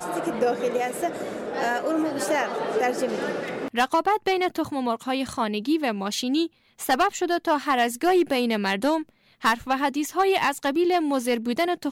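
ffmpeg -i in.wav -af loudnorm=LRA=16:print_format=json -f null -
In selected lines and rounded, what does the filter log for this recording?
"input_i" : "-24.5",
"input_tp" : "-13.7",
"input_lra" : "2.2",
"input_thresh" : "-34.5",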